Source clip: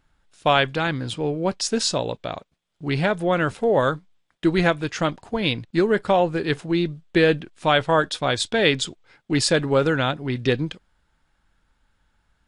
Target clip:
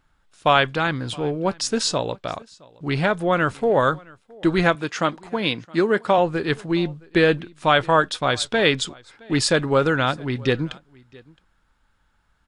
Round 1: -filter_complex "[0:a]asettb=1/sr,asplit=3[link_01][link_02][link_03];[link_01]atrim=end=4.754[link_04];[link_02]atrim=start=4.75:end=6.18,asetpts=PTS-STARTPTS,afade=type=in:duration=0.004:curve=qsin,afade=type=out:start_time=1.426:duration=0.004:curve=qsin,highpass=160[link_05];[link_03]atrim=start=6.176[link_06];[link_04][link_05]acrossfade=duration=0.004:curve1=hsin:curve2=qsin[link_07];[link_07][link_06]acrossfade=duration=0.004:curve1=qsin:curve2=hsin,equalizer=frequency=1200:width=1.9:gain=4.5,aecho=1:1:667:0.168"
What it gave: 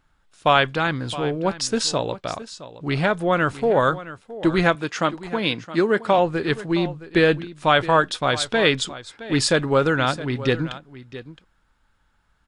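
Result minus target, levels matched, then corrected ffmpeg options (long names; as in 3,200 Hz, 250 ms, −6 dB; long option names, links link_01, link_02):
echo-to-direct +9.5 dB
-filter_complex "[0:a]asettb=1/sr,asplit=3[link_01][link_02][link_03];[link_01]atrim=end=4.754[link_04];[link_02]atrim=start=4.75:end=6.18,asetpts=PTS-STARTPTS,afade=type=in:duration=0.004:curve=qsin,afade=type=out:start_time=1.426:duration=0.004:curve=qsin,highpass=160[link_05];[link_03]atrim=start=6.176[link_06];[link_04][link_05]acrossfade=duration=0.004:curve1=hsin:curve2=qsin[link_07];[link_07][link_06]acrossfade=duration=0.004:curve1=qsin:curve2=hsin,equalizer=frequency=1200:width=1.9:gain=4.5,aecho=1:1:667:0.0562"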